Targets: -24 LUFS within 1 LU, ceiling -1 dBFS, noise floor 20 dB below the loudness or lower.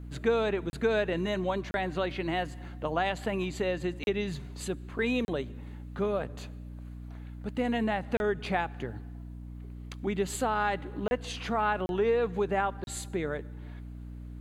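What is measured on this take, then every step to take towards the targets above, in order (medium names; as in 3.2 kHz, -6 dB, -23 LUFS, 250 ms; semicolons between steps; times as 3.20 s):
dropouts 8; longest dropout 31 ms; hum 60 Hz; highest harmonic 300 Hz; hum level -40 dBFS; loudness -31.0 LUFS; peak level -14.0 dBFS; loudness target -24.0 LUFS
-> interpolate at 0.70/1.71/4.04/5.25/8.17/11.08/11.86/12.84 s, 31 ms; hum notches 60/120/180/240/300 Hz; trim +7 dB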